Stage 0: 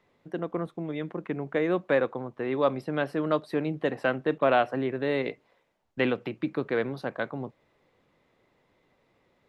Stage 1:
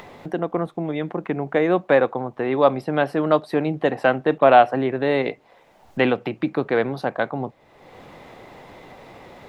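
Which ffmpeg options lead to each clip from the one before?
-filter_complex "[0:a]equalizer=f=770:t=o:w=0.52:g=7,asplit=2[a][b];[b]acompressor=mode=upward:threshold=-27dB:ratio=2.5,volume=3dB[c];[a][c]amix=inputs=2:normalize=0,volume=-1.5dB"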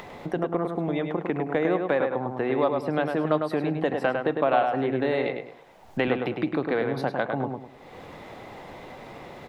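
-filter_complex "[0:a]acompressor=threshold=-24dB:ratio=2.5,asplit=2[a][b];[b]adelay=103,lowpass=f=3.3k:p=1,volume=-4.5dB,asplit=2[c][d];[d]adelay=103,lowpass=f=3.3k:p=1,volume=0.32,asplit=2[e][f];[f]adelay=103,lowpass=f=3.3k:p=1,volume=0.32,asplit=2[g][h];[h]adelay=103,lowpass=f=3.3k:p=1,volume=0.32[i];[a][c][e][g][i]amix=inputs=5:normalize=0"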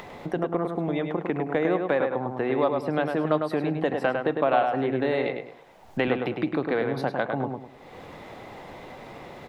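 -af anull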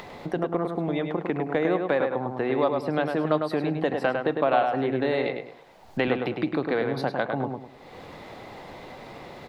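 -af "equalizer=f=4.4k:t=o:w=0.47:g=5"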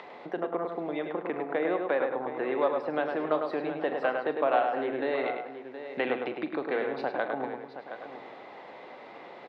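-filter_complex "[0:a]highpass=340,lowpass=3k,asplit=2[a][b];[b]aecho=0:1:40|81|720:0.211|0.126|0.282[c];[a][c]amix=inputs=2:normalize=0,volume=-3dB"

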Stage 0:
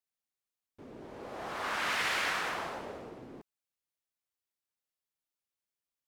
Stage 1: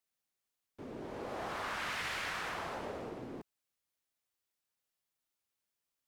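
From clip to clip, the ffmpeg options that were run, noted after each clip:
-filter_complex "[0:a]acrossover=split=140[a][b];[b]acompressor=threshold=-41dB:ratio=4[c];[a][c]amix=inputs=2:normalize=0,volume=3.5dB"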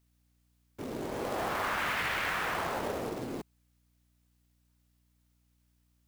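-filter_complex "[0:a]acrossover=split=3400[a][b];[b]acompressor=threshold=-58dB:ratio=4:attack=1:release=60[c];[a][c]amix=inputs=2:normalize=0,aeval=exprs='val(0)+0.000141*(sin(2*PI*60*n/s)+sin(2*PI*2*60*n/s)/2+sin(2*PI*3*60*n/s)/3+sin(2*PI*4*60*n/s)/4+sin(2*PI*5*60*n/s)/5)':c=same,acrusher=bits=3:mode=log:mix=0:aa=0.000001,volume=7dB"

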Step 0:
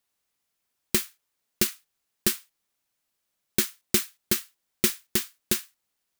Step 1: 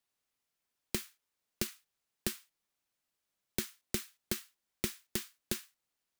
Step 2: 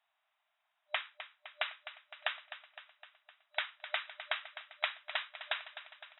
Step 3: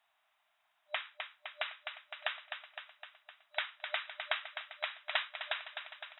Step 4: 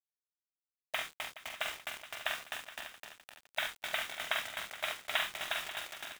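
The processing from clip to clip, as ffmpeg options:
-filter_complex "[0:a]highshelf=f=8.3k:g=-4,acrossover=split=150[a][b];[b]acompressor=threshold=-27dB:ratio=5[c];[a][c]amix=inputs=2:normalize=0,volume=-5dB"
-filter_complex "[0:a]afftfilt=real='re*between(b*sr/4096,600,3900)':imag='im*between(b*sr/4096,600,3900)':win_size=4096:overlap=0.75,highshelf=f=2.4k:g=-9.5,asplit=2[a][b];[b]aecho=0:1:256|512|768|1024|1280|1536|1792:0.251|0.151|0.0904|0.0543|0.0326|0.0195|0.0117[c];[a][c]amix=inputs=2:normalize=0,volume=13.5dB"
-af "alimiter=limit=-23.5dB:level=0:latency=1:release=306,volume=5dB"
-filter_complex "[0:a]bandreject=f=190.8:t=h:w=4,bandreject=f=381.6:t=h:w=4,bandreject=f=572.4:t=h:w=4,bandreject=f=763.2:t=h:w=4,bandreject=f=954:t=h:w=4,bandreject=f=1.1448k:t=h:w=4,acrusher=bits=6:mix=0:aa=0.000001,asplit=2[a][b];[b]aecho=0:1:45|71|274|421|539|596:0.562|0.376|0.224|0.178|0.211|0.2[c];[a][c]amix=inputs=2:normalize=0"

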